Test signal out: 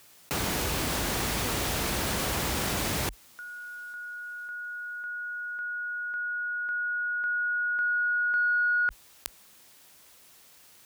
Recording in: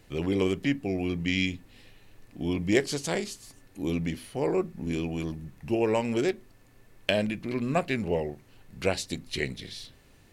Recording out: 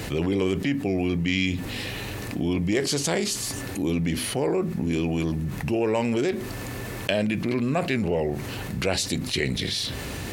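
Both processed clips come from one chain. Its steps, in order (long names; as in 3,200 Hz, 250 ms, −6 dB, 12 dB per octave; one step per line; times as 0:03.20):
high-pass filter 44 Hz 24 dB per octave
in parallel at −8 dB: soft clipping −17.5 dBFS
on the sum: envelope flattener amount 70%
level −4.5 dB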